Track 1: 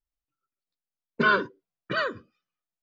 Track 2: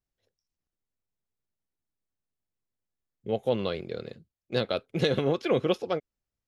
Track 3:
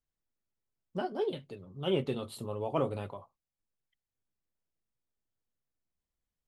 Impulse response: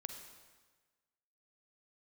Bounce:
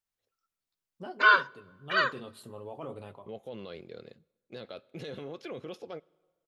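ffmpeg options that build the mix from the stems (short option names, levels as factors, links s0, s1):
-filter_complex "[0:a]highpass=f=670:w=0.5412,highpass=f=670:w=1.3066,volume=1.19,asplit=2[s0][s1];[s1]volume=0.0944[s2];[1:a]volume=0.355,asplit=2[s3][s4];[s4]volume=0.1[s5];[2:a]adelay=50,volume=0.473,asplit=2[s6][s7];[s7]volume=0.224[s8];[s3][s6]amix=inputs=2:normalize=0,alimiter=level_in=2.51:limit=0.0631:level=0:latency=1:release=23,volume=0.398,volume=1[s9];[3:a]atrim=start_sample=2205[s10];[s2][s5][s8]amix=inputs=3:normalize=0[s11];[s11][s10]afir=irnorm=-1:irlink=0[s12];[s0][s9][s12]amix=inputs=3:normalize=0,lowshelf=f=98:g=-8.5"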